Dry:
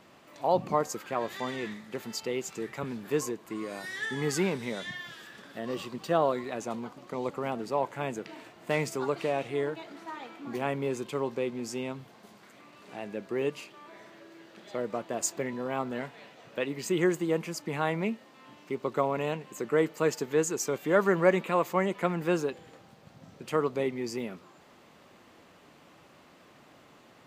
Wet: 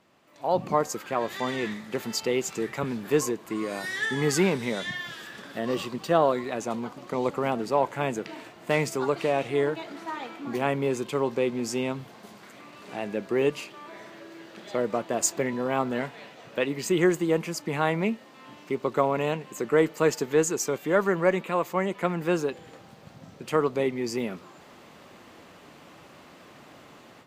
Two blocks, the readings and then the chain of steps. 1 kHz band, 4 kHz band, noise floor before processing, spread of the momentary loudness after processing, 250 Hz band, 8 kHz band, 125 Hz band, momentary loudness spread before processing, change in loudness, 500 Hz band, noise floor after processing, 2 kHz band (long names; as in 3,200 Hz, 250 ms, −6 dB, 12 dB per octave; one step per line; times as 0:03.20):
+3.5 dB, +5.0 dB, −57 dBFS, 14 LU, +4.0 dB, +5.0 dB, +4.0 dB, 15 LU, +4.0 dB, +4.0 dB, −51 dBFS, +4.0 dB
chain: automatic gain control gain up to 14 dB
harmonic generator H 2 −28 dB, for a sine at −1 dBFS
level −7.5 dB